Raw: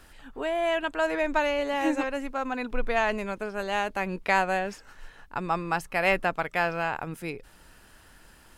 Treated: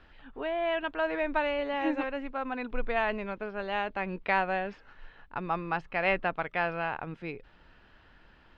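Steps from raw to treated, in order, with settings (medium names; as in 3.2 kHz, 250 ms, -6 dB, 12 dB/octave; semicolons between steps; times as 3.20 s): low-pass 3.7 kHz 24 dB/octave; trim -3.5 dB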